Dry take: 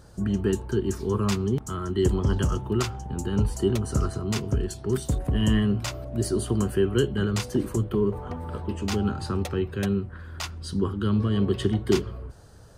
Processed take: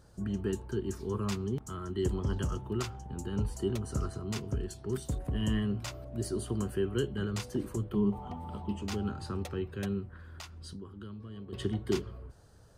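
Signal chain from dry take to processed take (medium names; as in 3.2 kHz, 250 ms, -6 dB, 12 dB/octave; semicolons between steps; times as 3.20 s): 7.95–8.82 s: graphic EQ with 31 bands 200 Hz +9 dB, 500 Hz -7 dB, 800 Hz +11 dB, 1.6 kHz -10 dB, 3.15 kHz +6 dB; 10.24–11.53 s: compression 8:1, threshold -33 dBFS, peak gain reduction 15 dB; trim -8.5 dB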